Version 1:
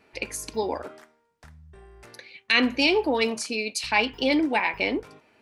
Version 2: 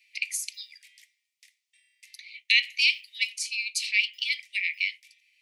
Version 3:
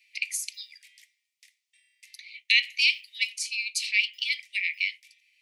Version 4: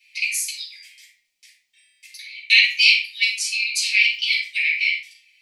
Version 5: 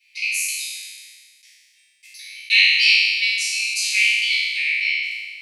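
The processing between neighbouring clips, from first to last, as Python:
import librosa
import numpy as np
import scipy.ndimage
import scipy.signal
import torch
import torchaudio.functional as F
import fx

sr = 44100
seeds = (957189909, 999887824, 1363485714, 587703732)

y1 = scipy.signal.sosfilt(scipy.signal.butter(16, 2000.0, 'highpass', fs=sr, output='sos'), x)
y1 = fx.rider(y1, sr, range_db=3, speed_s=2.0)
y2 = y1
y3 = fx.room_shoebox(y2, sr, seeds[0], volume_m3=430.0, walls='furnished', distance_m=7.8)
y3 = F.gain(torch.from_numpy(y3), -1.5).numpy()
y4 = fx.spec_trails(y3, sr, decay_s=1.67)
y4 = F.gain(torch.from_numpy(y4), -4.0).numpy()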